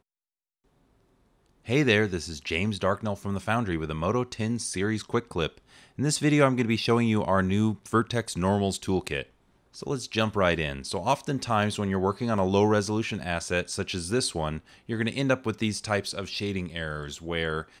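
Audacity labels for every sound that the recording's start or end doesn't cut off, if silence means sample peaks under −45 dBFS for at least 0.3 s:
1.660000	9.260000	sound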